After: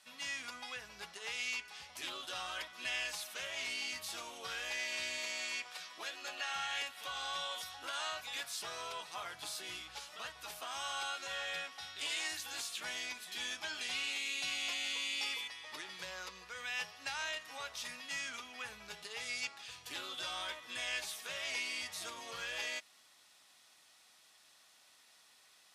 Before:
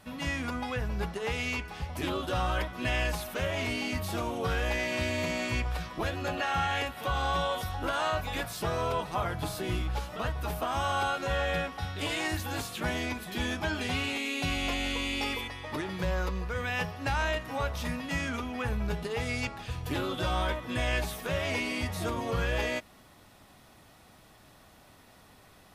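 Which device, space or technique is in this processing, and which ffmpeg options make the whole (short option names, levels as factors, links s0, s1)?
piezo pickup straight into a mixer: -filter_complex "[0:a]asettb=1/sr,asplit=3[s0][s1][s2];[s0]atrim=end=5.184[s3];[s1]atrim=start=5.18:end=6.5,asetpts=PTS-STARTPTS,afade=t=in:d=0.004:c=qsin,afade=t=out:st=1.316:d=0.004:c=qsin,highpass=230[s4];[s2]atrim=start=6.496[s5];[s3][s4]acrossfade=d=0.004:c1=hsin:c2=qsin[s6];[s6][s5]acrossfade=d=0.004:c1=qsin:c2=hsin,lowpass=6500,aderivative,volume=1.68"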